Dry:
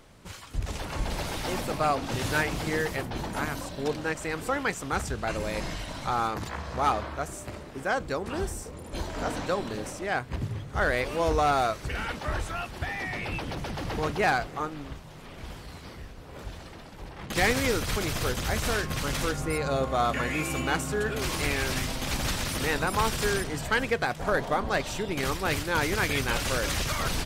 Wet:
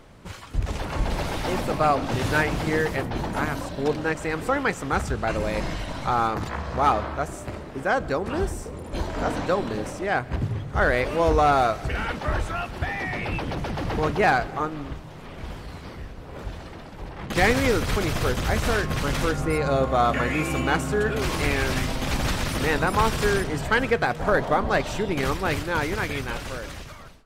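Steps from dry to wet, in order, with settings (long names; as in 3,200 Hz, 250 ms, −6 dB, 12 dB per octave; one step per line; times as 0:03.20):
fade-out on the ending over 2.15 s
high-shelf EQ 3,300 Hz −8 dB
on a send: convolution reverb RT60 0.95 s, pre-delay 90 ms, DRR 21 dB
on the sum: level +5.5 dB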